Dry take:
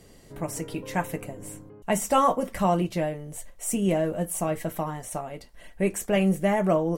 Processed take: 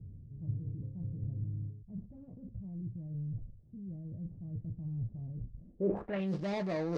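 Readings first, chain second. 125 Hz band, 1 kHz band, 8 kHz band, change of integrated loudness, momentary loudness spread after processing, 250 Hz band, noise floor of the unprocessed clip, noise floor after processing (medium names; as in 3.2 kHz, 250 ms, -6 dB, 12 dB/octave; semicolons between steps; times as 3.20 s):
-5.0 dB, under -20 dB, under -35 dB, -13.0 dB, 13 LU, -11.5 dB, -52 dBFS, -55 dBFS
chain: median filter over 41 samples; high-pass 85 Hz 6 dB/octave; band-stop 1.5 kHz, Q 16; gain riding within 3 dB 0.5 s; transient shaper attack -4 dB, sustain +8 dB; reverse; compression 4:1, threshold -40 dBFS, peak gain reduction 15.5 dB; reverse; low-pass sweep 110 Hz -> 5 kHz, 5.55–6.31 s; trim +5.5 dB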